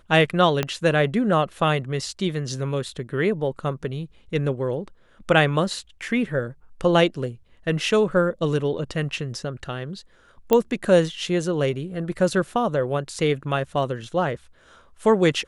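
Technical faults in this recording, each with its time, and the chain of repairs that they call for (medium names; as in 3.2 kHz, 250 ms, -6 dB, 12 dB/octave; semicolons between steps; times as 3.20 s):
0.63 s: pop -8 dBFS
10.53 s: pop -6 dBFS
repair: de-click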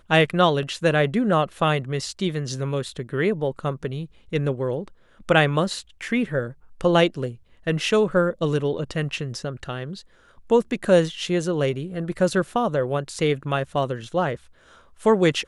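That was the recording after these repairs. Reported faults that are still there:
0.63 s: pop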